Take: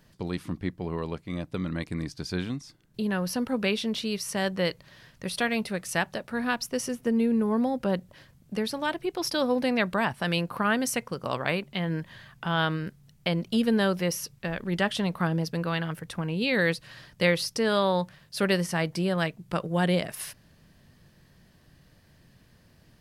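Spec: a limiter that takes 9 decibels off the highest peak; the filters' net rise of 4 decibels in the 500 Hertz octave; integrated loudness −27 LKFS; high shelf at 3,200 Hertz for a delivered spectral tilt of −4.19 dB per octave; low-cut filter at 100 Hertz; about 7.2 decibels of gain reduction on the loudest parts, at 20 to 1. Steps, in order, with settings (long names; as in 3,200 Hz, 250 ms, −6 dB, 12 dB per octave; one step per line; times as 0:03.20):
high-pass filter 100 Hz
parametric band 500 Hz +4.5 dB
high-shelf EQ 3,200 Hz +6 dB
downward compressor 20 to 1, threshold −23 dBFS
level +4.5 dB
brickwall limiter −16 dBFS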